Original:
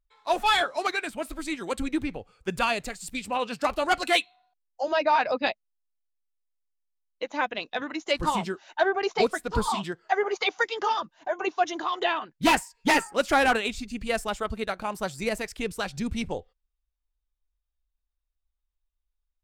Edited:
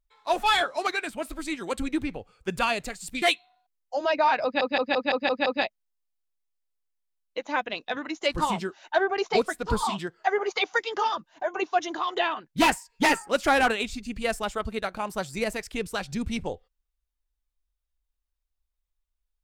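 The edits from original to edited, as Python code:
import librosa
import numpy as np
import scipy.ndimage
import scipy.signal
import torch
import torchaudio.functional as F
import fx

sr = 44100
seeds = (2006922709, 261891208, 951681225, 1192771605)

y = fx.edit(x, sr, fx.cut(start_s=3.22, length_s=0.87),
    fx.stutter(start_s=5.31, slice_s=0.17, count=7), tone=tone)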